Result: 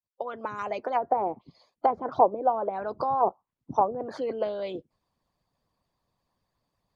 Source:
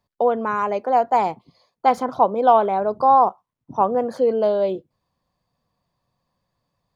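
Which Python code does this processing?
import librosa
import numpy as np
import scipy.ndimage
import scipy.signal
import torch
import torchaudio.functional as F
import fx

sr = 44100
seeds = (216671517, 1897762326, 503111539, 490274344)

y = fx.fade_in_head(x, sr, length_s=0.67)
y = fx.hpss(y, sr, part='harmonic', gain_db=-15)
y = fx.env_lowpass_down(y, sr, base_hz=630.0, full_db=-21.0)
y = F.gain(torch.from_numpy(y), 2.0).numpy()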